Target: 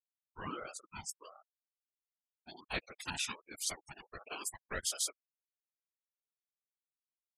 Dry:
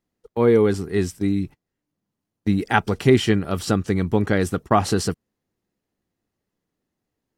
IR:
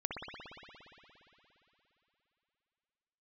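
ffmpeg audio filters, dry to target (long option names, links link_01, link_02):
-filter_complex "[0:a]aderivative,asplit=2[link_01][link_02];[1:a]atrim=start_sample=2205,asetrate=33516,aresample=44100[link_03];[link_02][link_03]afir=irnorm=-1:irlink=0,volume=-20dB[link_04];[link_01][link_04]amix=inputs=2:normalize=0,afftfilt=real='re*gte(hypot(re,im),0.02)':imag='im*gte(hypot(re,im),0.02)':win_size=1024:overlap=0.75,asubboost=boost=4.5:cutoff=63,afftfilt=real='hypot(re,im)*cos(2*PI*random(0))':imag='hypot(re,im)*sin(2*PI*random(1))':win_size=512:overlap=0.75,aeval=exprs='val(0)*sin(2*PI*740*n/s+740*0.35/1.4*sin(2*PI*1.4*n/s))':channel_layout=same,volume=5.5dB"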